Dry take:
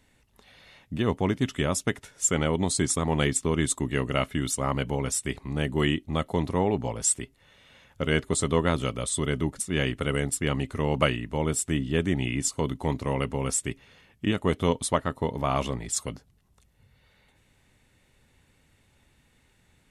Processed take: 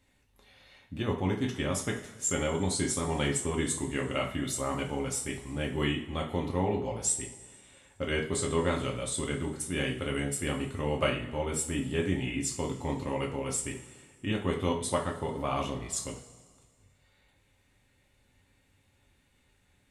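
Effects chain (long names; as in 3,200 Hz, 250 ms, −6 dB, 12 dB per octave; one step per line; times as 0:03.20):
coupled-rooms reverb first 0.39 s, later 1.9 s, from −17 dB, DRR −1 dB
level −7.5 dB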